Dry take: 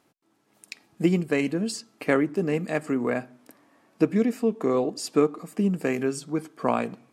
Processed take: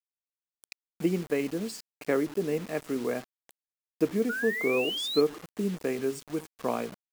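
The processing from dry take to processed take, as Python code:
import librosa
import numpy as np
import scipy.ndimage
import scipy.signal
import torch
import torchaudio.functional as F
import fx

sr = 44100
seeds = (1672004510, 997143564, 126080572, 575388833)

y = fx.spec_paint(x, sr, seeds[0], shape='rise', start_s=4.29, length_s=0.92, low_hz=1400.0, high_hz=4300.0, level_db=-25.0)
y = fx.dynamic_eq(y, sr, hz=430.0, q=1.7, threshold_db=-34.0, ratio=4.0, max_db=6)
y = fx.quant_dither(y, sr, seeds[1], bits=6, dither='none')
y = F.gain(torch.from_numpy(y), -8.0).numpy()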